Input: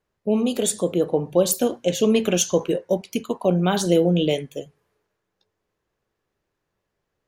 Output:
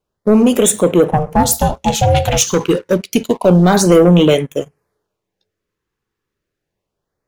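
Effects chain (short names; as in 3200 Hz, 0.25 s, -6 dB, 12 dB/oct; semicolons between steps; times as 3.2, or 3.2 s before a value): sample leveller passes 2; LFO notch sine 0.29 Hz 610–4900 Hz; 1.11–2.47 ring modulator 310 Hz; gain +5 dB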